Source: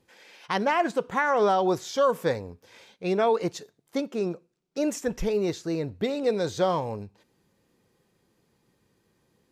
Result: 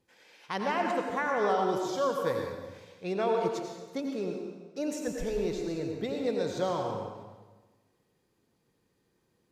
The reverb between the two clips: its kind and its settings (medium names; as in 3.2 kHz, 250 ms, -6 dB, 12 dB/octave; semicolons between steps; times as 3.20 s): plate-style reverb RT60 1.3 s, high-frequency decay 0.85×, pre-delay 75 ms, DRR 2 dB; trim -7 dB